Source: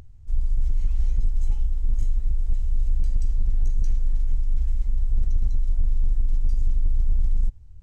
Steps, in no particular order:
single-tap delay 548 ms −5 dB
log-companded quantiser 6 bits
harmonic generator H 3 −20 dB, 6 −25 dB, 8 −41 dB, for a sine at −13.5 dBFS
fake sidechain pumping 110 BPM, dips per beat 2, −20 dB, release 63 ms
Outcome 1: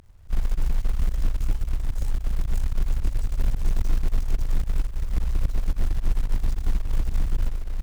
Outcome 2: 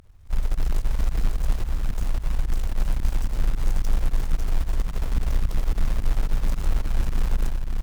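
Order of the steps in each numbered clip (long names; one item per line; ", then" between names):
single-tap delay, then harmonic generator, then log-companded quantiser, then fake sidechain pumping
log-companded quantiser, then harmonic generator, then fake sidechain pumping, then single-tap delay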